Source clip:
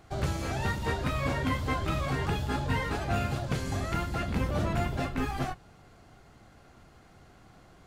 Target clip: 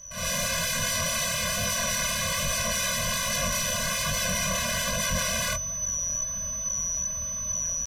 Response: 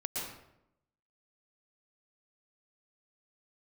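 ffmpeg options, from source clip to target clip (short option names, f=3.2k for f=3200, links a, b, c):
-filter_complex "[0:a]equalizer=f=160:t=o:w=0.33:g=-7,equalizer=f=630:t=o:w=0.33:g=-7,equalizer=f=4k:t=o:w=0.33:g=8,equalizer=f=12.5k:t=o:w=0.33:g=6,asplit=2[a][b];[b]asoftclip=type=hard:threshold=-30.5dB,volume=-8.5dB[c];[a][c]amix=inputs=2:normalize=0,highshelf=f=11k:g=-5,asetrate=35002,aresample=44100,atempo=1.25992,aeval=exprs='(mod(35.5*val(0)+1,2)-1)/35.5':c=same,aeval=exprs='val(0)+0.0126*sin(2*PI*6000*n/s)':c=same,aeval=exprs='0.0422*(cos(1*acos(clip(val(0)/0.0422,-1,1)))-cos(1*PI/2))+0.00119*(cos(4*acos(clip(val(0)/0.0422,-1,1)))-cos(4*PI/2))+0.00596*(cos(5*acos(clip(val(0)/0.0422,-1,1)))-cos(5*PI/2))+0.000668*(cos(6*acos(clip(val(0)/0.0422,-1,1)))-cos(6*PI/2))':c=same,aresample=32000,aresample=44100,flanger=delay=19.5:depth=7.9:speed=1.2,dynaudnorm=f=140:g=3:m=15dB,afftfilt=real='re*eq(mod(floor(b*sr/1024/240),2),0)':imag='im*eq(mod(floor(b*sr/1024/240),2),0)':win_size=1024:overlap=0.75,volume=-2dB"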